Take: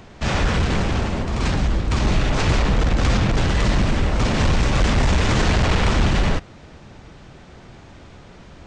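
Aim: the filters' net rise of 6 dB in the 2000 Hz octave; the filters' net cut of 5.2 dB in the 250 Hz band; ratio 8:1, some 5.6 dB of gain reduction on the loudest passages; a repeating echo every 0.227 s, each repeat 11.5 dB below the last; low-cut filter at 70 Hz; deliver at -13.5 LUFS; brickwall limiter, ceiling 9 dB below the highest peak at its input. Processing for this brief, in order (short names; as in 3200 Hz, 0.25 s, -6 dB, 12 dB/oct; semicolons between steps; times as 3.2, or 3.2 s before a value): HPF 70 Hz; bell 250 Hz -7.5 dB; bell 2000 Hz +7.5 dB; compressor 8:1, threshold -21 dBFS; limiter -19.5 dBFS; feedback echo 0.227 s, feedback 27%, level -11.5 dB; gain +15 dB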